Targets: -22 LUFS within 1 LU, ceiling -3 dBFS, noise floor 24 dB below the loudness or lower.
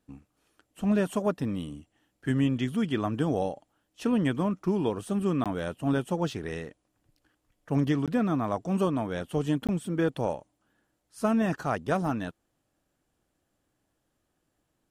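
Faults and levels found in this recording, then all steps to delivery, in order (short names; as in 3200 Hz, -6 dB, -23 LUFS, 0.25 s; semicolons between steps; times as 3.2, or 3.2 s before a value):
dropouts 3; longest dropout 17 ms; loudness -29.0 LUFS; peak -14.5 dBFS; loudness target -22.0 LUFS
-> interpolate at 5.44/8.06/9.67, 17 ms; gain +7 dB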